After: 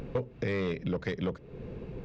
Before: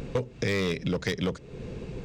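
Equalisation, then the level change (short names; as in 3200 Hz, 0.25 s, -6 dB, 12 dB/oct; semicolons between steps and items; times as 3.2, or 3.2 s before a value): tape spacing loss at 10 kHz 30 dB; low shelf 400 Hz -3.5 dB; 0.0 dB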